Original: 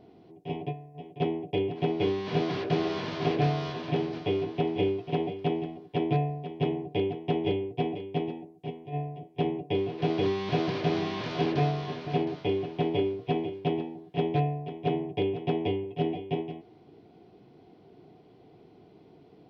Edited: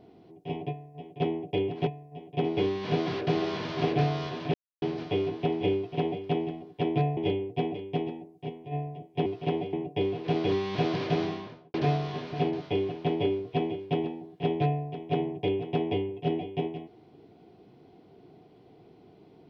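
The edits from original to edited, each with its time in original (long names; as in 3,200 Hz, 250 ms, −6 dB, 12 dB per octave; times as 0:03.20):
0:00.70–0:01.27: duplicate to 0:01.87
0:03.97: splice in silence 0.28 s
0:04.92–0:05.39: duplicate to 0:09.47
0:06.32–0:07.38: remove
0:10.87–0:11.48: fade out and dull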